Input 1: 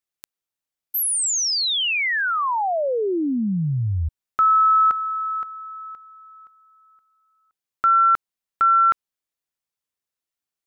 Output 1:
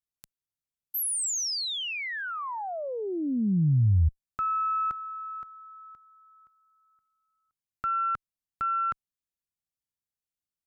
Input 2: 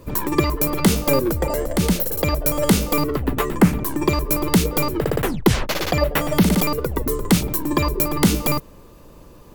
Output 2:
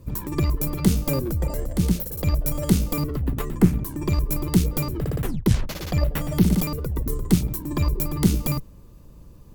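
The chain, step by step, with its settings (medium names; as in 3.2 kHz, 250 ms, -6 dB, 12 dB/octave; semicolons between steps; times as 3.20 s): tone controls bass +14 dB, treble +5 dB; Chebyshev shaper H 2 -10 dB, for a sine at 7.5 dBFS; trim -12 dB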